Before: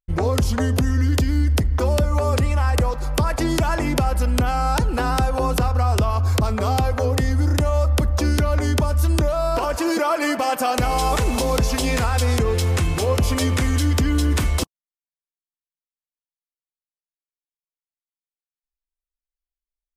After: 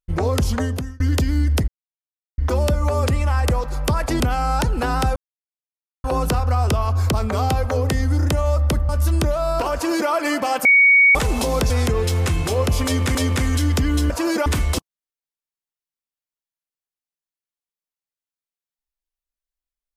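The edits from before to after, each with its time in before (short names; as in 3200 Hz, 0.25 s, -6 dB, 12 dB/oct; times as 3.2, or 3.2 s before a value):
0.56–1 fade out linear
1.68 insert silence 0.70 s
3.5–4.36 cut
5.32 insert silence 0.88 s
8.17–8.86 cut
9.71–10.07 copy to 14.31
10.62–11.12 bleep 2240 Hz -9 dBFS
11.67–12.21 cut
13.36–13.66 loop, 2 plays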